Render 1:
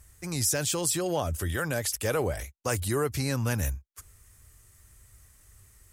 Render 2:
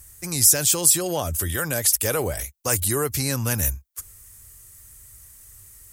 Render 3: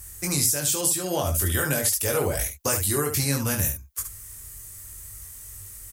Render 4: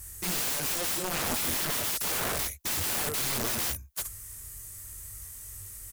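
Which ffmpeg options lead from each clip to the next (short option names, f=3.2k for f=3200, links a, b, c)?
-af "aemphasis=mode=production:type=50kf,volume=2.5dB"
-filter_complex "[0:a]acompressor=threshold=-26dB:ratio=6,asplit=2[a][b];[b]aecho=0:1:21|72:0.668|0.422[c];[a][c]amix=inputs=2:normalize=0,volume=3.5dB"
-af "aeval=exprs='(mod(14.1*val(0)+1,2)-1)/14.1':c=same,volume=-2dB"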